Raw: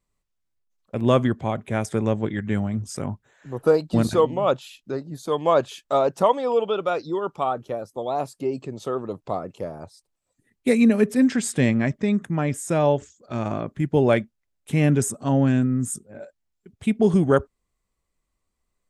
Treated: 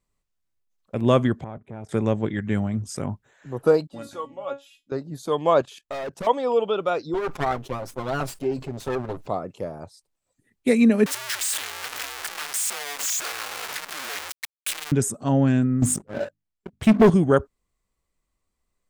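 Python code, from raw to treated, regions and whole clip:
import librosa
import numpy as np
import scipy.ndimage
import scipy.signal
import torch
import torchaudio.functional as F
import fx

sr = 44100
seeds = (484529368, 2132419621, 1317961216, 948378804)

y = fx.chain(x, sr, fx.lowpass(hz=1000.0, slope=6),
    fx.level_steps(step_db=17),
    fx.transformer_sat(knee_hz=360.0), at=(1.44, 1.89))
y = fx.chain(y, sr, fx.low_shelf(hz=280.0, db=-9.5),
    fx.notch(hz=4300.0, q=13.0),
    fx.comb_fb(f0_hz=280.0, decay_s=0.18, harmonics='all', damping=0.0, mix_pct=90), at=(3.87, 4.92))
y = fx.chain(y, sr, fx.clip_hard(threshold_db=-23.0),
    fx.level_steps(step_db=15), at=(5.62, 6.27))
y = fx.chain(y, sr, fx.lower_of_two(delay_ms=7.6),
    fx.sustainer(db_per_s=140.0), at=(7.14, 9.27))
y = fx.chain(y, sr, fx.clip_1bit(),
    fx.highpass(hz=1200.0, slope=12),
    fx.ring_mod(carrier_hz=140.0), at=(11.06, 14.92))
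y = fx.chain(y, sr, fx.high_shelf(hz=5700.0, db=-7.5),
    fx.hum_notches(base_hz=50, count=6),
    fx.leveller(passes=3), at=(15.82, 17.1))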